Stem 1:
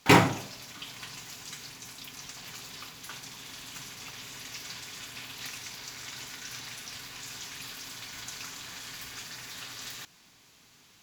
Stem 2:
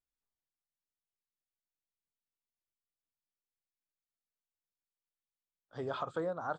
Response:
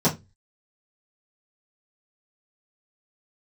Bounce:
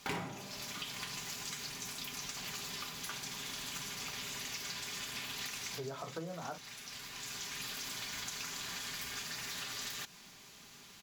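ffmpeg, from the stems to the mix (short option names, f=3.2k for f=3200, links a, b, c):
-filter_complex "[0:a]aecho=1:1:5:0.37,aeval=exprs='0.562*sin(PI/2*2*val(0)/0.562)':c=same,volume=-7dB[a];[1:a]volume=-4.5dB,asplit=3[b][c][d];[c]volume=-19dB[e];[d]apad=whole_len=486394[f];[a][f]sidechaincompress=threshold=-47dB:ratio=4:attack=5.8:release=1320[g];[2:a]atrim=start_sample=2205[h];[e][h]afir=irnorm=-1:irlink=0[i];[g][b][i]amix=inputs=3:normalize=0,acompressor=threshold=-38dB:ratio=8"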